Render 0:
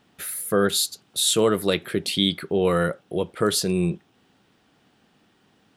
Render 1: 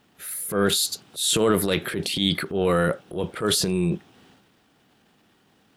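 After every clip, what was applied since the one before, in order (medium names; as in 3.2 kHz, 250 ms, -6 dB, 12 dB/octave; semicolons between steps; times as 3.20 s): transient shaper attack -8 dB, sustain +8 dB; word length cut 12-bit, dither none; pre-echo 31 ms -22 dB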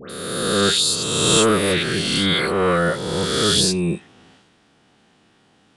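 reverse spectral sustain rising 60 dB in 1.72 s; phase dispersion highs, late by 99 ms, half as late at 1.8 kHz; resampled via 22.05 kHz; trim +1 dB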